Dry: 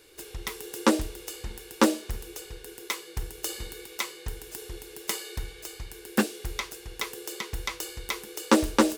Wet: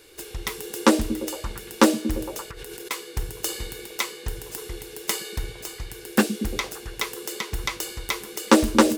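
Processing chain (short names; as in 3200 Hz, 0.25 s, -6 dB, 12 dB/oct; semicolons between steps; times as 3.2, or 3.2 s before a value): 2.51–2.91 negative-ratio compressor -46 dBFS, ratio -1; delay with a stepping band-pass 0.115 s, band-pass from 150 Hz, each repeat 0.7 oct, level -5.5 dB; gain +4.5 dB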